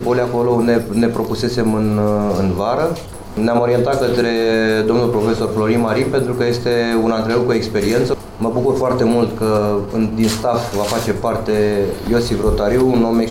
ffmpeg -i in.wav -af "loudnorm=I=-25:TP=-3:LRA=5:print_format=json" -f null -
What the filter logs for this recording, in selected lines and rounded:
"input_i" : "-16.6",
"input_tp" : "-2.8",
"input_lra" : "1.0",
"input_thresh" : "-26.6",